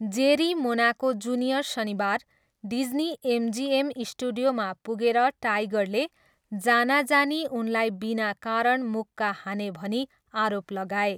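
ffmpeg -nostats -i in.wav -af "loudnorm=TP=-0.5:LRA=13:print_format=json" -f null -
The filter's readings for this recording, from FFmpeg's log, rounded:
"input_i" : "-26.4",
"input_tp" : "-8.5",
"input_lra" : "3.1",
"input_thresh" : "-36.5",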